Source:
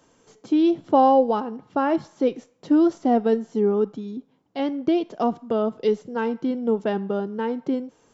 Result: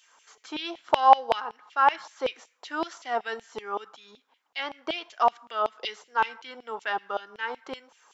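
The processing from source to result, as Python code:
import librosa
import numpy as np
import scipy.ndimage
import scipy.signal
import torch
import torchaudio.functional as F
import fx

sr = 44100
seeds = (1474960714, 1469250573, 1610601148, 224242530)

y = fx.filter_lfo_highpass(x, sr, shape='saw_down', hz=5.3, low_hz=800.0, high_hz=3000.0, q=2.3)
y = y * 10.0 ** (2.0 / 20.0)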